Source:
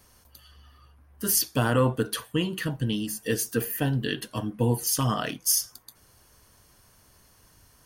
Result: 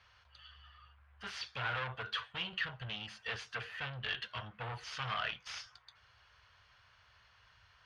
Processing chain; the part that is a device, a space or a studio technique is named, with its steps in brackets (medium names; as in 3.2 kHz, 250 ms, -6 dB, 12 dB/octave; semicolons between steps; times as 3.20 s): scooped metal amplifier (valve stage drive 29 dB, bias 0.3; cabinet simulation 81–3400 Hz, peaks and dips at 150 Hz -6 dB, 250 Hz -8 dB, 1.4 kHz +4 dB; amplifier tone stack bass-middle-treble 10-0-10); trim +6 dB